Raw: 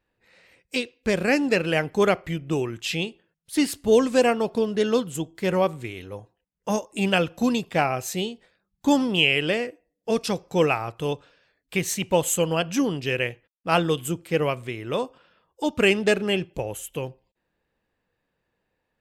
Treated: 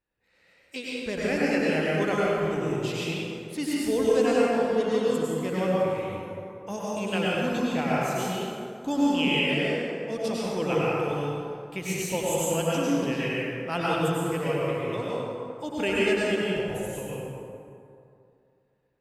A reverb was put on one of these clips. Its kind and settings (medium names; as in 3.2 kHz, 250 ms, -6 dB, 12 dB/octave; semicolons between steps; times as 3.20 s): plate-style reverb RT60 2.5 s, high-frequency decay 0.5×, pre-delay 85 ms, DRR -7 dB; trim -10.5 dB